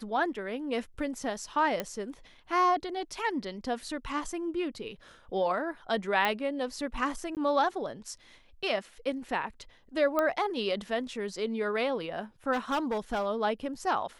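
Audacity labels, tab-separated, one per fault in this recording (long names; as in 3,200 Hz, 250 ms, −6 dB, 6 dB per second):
1.800000	1.800000	click −16 dBFS
6.250000	6.250000	click −14 dBFS
7.350000	7.370000	drop-out 18 ms
10.190000	10.190000	click −15 dBFS
12.520000	13.260000	clipping −25.5 dBFS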